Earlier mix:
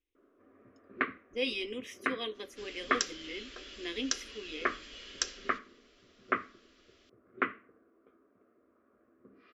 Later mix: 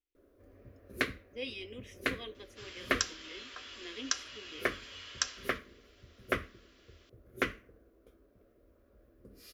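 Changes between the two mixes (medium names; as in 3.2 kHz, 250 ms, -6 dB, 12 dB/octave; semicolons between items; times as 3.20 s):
speech -7.5 dB; first sound: remove cabinet simulation 240–2400 Hz, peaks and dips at 240 Hz +4 dB, 540 Hz -7 dB, 1.2 kHz +9 dB; second sound: add resonant high-pass 900 Hz, resonance Q 2.1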